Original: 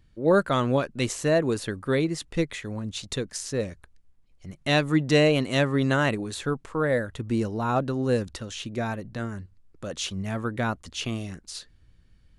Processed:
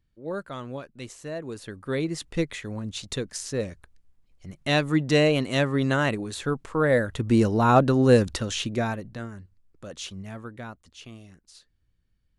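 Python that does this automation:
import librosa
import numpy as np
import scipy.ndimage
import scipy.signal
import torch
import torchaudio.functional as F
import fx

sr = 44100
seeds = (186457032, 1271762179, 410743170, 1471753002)

y = fx.gain(x, sr, db=fx.line((1.35, -12.5), (2.18, -0.5), (6.33, -0.5), (7.53, 7.0), (8.56, 7.0), (9.32, -5.5), (10.09, -5.5), (10.81, -13.5)))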